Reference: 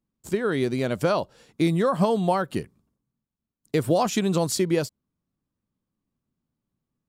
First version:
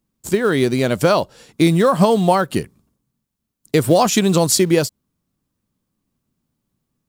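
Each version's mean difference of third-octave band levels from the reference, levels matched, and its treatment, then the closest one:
2.0 dB: high-shelf EQ 4,200 Hz +5.5 dB
in parallel at −9 dB: floating-point word with a short mantissa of 2 bits
on the sum: level +5 dB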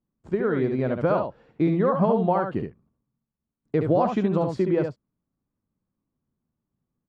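8.0 dB: low-pass filter 1,500 Hz 12 dB per octave
single-tap delay 70 ms −5.5 dB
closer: first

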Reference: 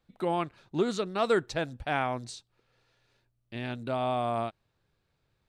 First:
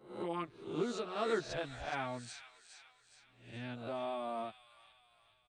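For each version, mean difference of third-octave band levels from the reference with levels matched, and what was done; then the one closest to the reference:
5.5 dB: peak hold with a rise ahead of every peak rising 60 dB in 0.54 s
on a send: delay with a high-pass on its return 418 ms, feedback 49%, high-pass 2,200 Hz, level −7.5 dB
on the sum: downsampling to 22,050 Hz
barber-pole flanger 11.5 ms −0.65 Hz
level −7 dB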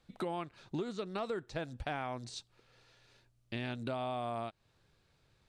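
3.5 dB: high-shelf EQ 4,900 Hz +11.5 dB
de-essing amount 100%
high-frequency loss of the air 55 metres
downward compressor 5 to 1, threshold −40 dBFS, peak gain reduction 16.5 dB
level +4 dB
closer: second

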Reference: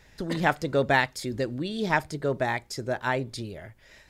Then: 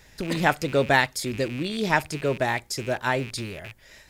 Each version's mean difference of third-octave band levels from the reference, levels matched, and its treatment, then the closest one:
3.5 dB: loose part that buzzes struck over −44 dBFS, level −31 dBFS
high-shelf EQ 5,800 Hz +8 dB
level +2 dB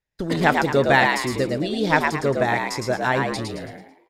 7.0 dB: noise gate −45 dBFS, range −35 dB
echo with shifted repeats 110 ms, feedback 40%, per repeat +78 Hz, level −4 dB
level +5 dB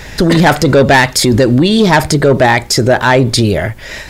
5.0 dB: soft clipping −21 dBFS, distortion −10 dB
boost into a limiter +28 dB
level −1 dB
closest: first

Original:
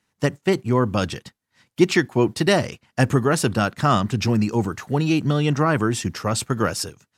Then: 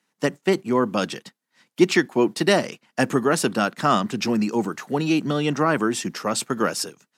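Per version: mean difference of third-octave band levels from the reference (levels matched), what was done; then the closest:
2.5 dB: high-pass filter 180 Hz 24 dB per octave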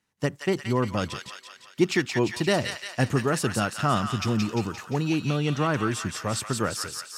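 4.5 dB: delay with a high-pass on its return 174 ms, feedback 58%, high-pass 1,500 Hz, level −3 dB
level −5.5 dB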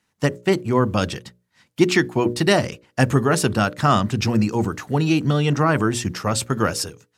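1.5 dB: mains-hum notches 60/120/180/240/300/360/420/480/540/600 Hz
level +1.5 dB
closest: third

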